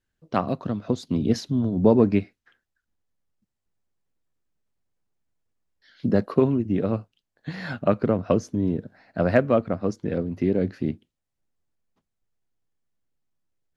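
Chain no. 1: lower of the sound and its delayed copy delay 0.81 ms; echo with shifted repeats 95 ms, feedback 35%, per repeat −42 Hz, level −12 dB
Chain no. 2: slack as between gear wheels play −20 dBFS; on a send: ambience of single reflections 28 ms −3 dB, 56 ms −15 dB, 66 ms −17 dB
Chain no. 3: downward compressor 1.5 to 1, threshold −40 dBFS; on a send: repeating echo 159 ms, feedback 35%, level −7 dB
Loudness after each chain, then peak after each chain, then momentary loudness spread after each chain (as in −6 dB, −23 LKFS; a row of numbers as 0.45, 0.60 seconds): −25.5, −24.0, −32.0 LKFS; −6.5, −3.5, −13.5 dBFS; 12, 13, 10 LU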